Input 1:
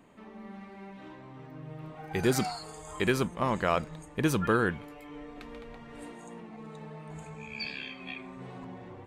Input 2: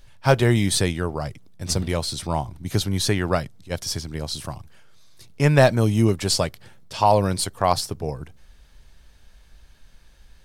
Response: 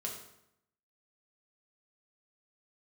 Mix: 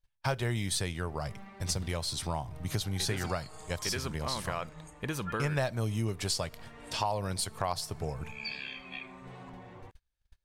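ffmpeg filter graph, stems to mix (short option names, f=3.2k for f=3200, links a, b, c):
-filter_complex "[0:a]adelay=850,volume=-0.5dB[a];[1:a]agate=range=-34dB:threshold=-42dB:ratio=16:detection=peak,volume=0dB,asplit=2[b][c];[c]volume=-23dB[d];[2:a]atrim=start_sample=2205[e];[d][e]afir=irnorm=-1:irlink=0[f];[a][b][f]amix=inputs=3:normalize=0,equalizer=f=290:t=o:w=1.7:g=-6.5,acompressor=threshold=-32dB:ratio=3"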